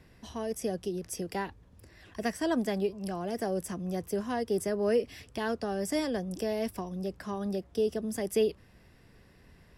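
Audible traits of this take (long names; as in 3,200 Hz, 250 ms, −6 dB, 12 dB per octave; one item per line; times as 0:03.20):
background noise floor −59 dBFS
spectral slope −5.0 dB per octave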